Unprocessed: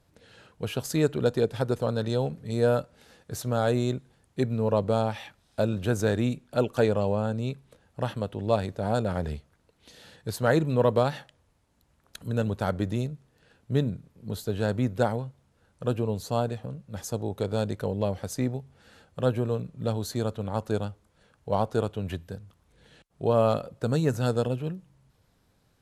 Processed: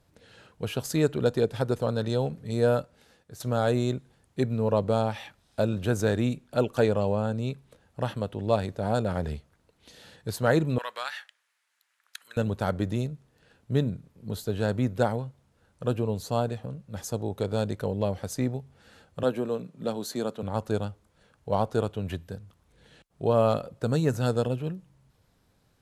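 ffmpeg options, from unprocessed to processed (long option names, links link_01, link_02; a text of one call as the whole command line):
ffmpeg -i in.wav -filter_complex "[0:a]asettb=1/sr,asplit=3[link_01][link_02][link_03];[link_01]atrim=end=10.784[link_04];[link_02]atrim=start=10.78:end=12.37,asetpts=PTS-STARTPTS,afade=type=in:duration=0.004:curve=qsin,afade=type=out:start_time=1.586:duration=0.004:curve=qsin,highpass=frequency=1700:width_type=q:width=1.8[link_05];[link_03]atrim=start=12.366[link_06];[link_04][link_05]acrossfade=duration=0.004:curve1=hsin:curve2=qsin[link_07];[link_07][link_06]acrossfade=duration=0.004:curve1=qsin:curve2=hsin,asettb=1/sr,asplit=3[link_08][link_09][link_10];[link_08]atrim=end=19.234[link_11];[link_09]atrim=start=19.23:end=20.43,asetpts=PTS-STARTPTS,afade=type=in:duration=0.004:curve=qsin,afade=type=out:start_time=1.196:duration=0.004:curve=qsin,highpass=frequency=170:width=0.5412,highpass=frequency=170:width=1.3066[link_12];[link_10]atrim=start=20.426[link_13];[link_11][link_12]acrossfade=duration=0.004:curve1=hsin:curve2=qsin[link_14];[link_14][link_13]acrossfade=duration=0.004:curve1=qsin:curve2=hsin,asplit=2[link_15][link_16];[link_15]atrim=end=3.4,asetpts=PTS-STARTPTS,afade=type=out:start_time=2.73:duration=0.67:silence=0.251189[link_17];[link_16]atrim=start=3.4,asetpts=PTS-STARTPTS,afade=type=in:duration=0.004:curve=hsin:silence=0.251189[link_18];[link_17][link_18]concat=n=2:v=0:a=1" out.wav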